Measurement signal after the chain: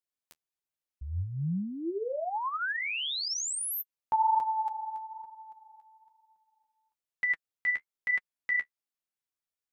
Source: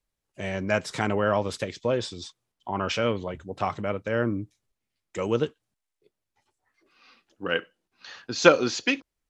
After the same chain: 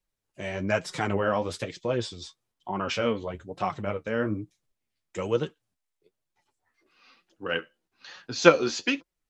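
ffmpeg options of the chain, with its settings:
ffmpeg -i in.wav -af "flanger=delay=5.4:depth=8.4:regen=30:speed=1.1:shape=sinusoidal,volume=2dB" out.wav

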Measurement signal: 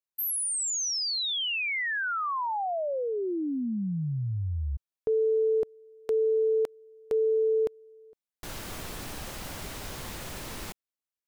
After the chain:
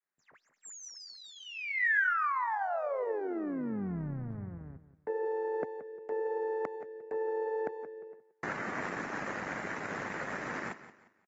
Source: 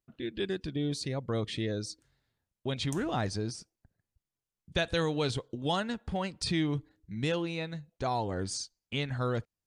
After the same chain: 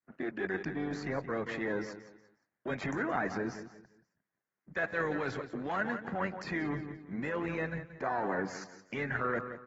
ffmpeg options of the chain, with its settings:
ffmpeg -i in.wav -filter_complex "[0:a]aeval=exprs='if(lt(val(0),0),0.447*val(0),val(0))':channel_layout=same,highpass=frequency=160:width=0.5412,highpass=frequency=160:width=1.3066,aecho=1:1:176|352|528:0.2|0.0638|0.0204,acrossover=split=400[link_01][link_02];[link_01]acompressor=threshold=-40dB:ratio=6:attack=2.8:release=87:knee=2.83:detection=peak[link_03];[link_03][link_02]amix=inputs=2:normalize=0,adynamicequalizer=threshold=0.00891:dfrequency=480:dqfactor=1.4:tfrequency=480:tqfactor=1.4:attack=5:release=100:ratio=0.4:range=2:mode=cutabove:tftype=bell,areverse,acompressor=threshold=-41dB:ratio=16:attack=32:release=22:knee=1:detection=rms,areverse,highshelf=frequency=2500:width_type=q:width=3:gain=-11,tremolo=f=98:d=0.462,volume=7.5dB" -ar 44100 -c:a aac -b:a 24k out.aac

